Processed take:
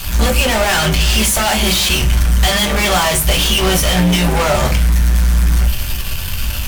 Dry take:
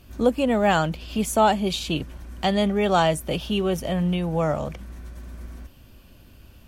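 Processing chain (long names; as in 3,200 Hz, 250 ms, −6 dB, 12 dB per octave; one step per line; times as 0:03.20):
guitar amp tone stack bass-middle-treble 10-0-10
fuzz pedal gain 53 dB, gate −60 dBFS
on a send: convolution reverb RT60 0.30 s, pre-delay 5 ms, DRR 1.5 dB
on the sum: level −2.5 dB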